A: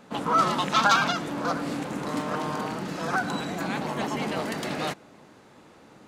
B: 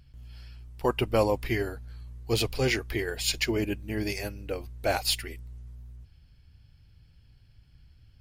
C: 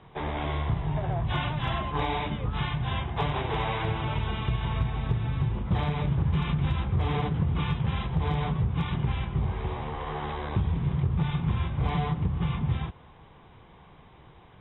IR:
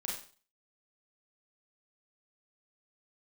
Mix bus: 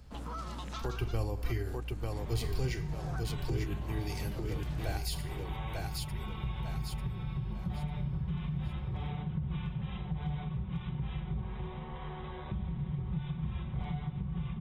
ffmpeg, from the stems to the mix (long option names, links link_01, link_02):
-filter_complex "[0:a]volume=-14.5dB[link_01];[1:a]aecho=1:1:2.6:0.44,volume=-4.5dB,asplit=3[link_02][link_03][link_04];[link_02]atrim=end=2.84,asetpts=PTS-STARTPTS,afade=type=out:start_time=2.836:duration=0.004:curve=hsin[link_05];[link_03]atrim=start=2.84:end=3.49,asetpts=PTS-STARTPTS,volume=0[link_06];[link_04]atrim=start=3.49,asetpts=PTS-STARTPTS,afade=type=in:duration=0.004:curve=hsin[link_07];[link_05][link_06][link_07]concat=n=3:v=0:a=1,asplit=3[link_08][link_09][link_10];[link_09]volume=-10dB[link_11];[link_10]volume=-3.5dB[link_12];[2:a]aecho=1:1:5.4:0.65,adelay=1950,volume=-13.5dB,asplit=3[link_13][link_14][link_15];[link_14]volume=-6.5dB[link_16];[link_15]volume=-9.5dB[link_17];[3:a]atrim=start_sample=2205[link_18];[link_11][link_16]amix=inputs=2:normalize=0[link_19];[link_19][link_18]afir=irnorm=-1:irlink=0[link_20];[link_12][link_17]amix=inputs=2:normalize=0,aecho=0:1:895|1790|2685|3580:1|0.26|0.0676|0.0176[link_21];[link_01][link_08][link_13][link_20][link_21]amix=inputs=5:normalize=0,bass=frequency=250:gain=4,treble=frequency=4000:gain=5,acrossover=split=140[link_22][link_23];[link_23]acompressor=threshold=-42dB:ratio=3[link_24];[link_22][link_24]amix=inputs=2:normalize=0"